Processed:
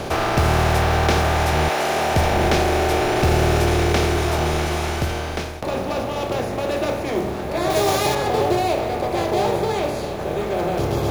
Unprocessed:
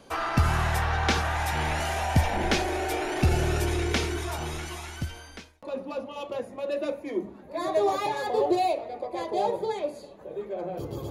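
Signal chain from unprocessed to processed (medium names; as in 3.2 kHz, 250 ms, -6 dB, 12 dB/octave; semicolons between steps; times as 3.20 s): spectral levelling over time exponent 0.4; modulation noise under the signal 28 dB; 1.68–2.15 s: high-pass 440 Hz -> 120 Hz 12 dB/octave; 7.70–8.15 s: treble shelf 3.9 kHz +11.5 dB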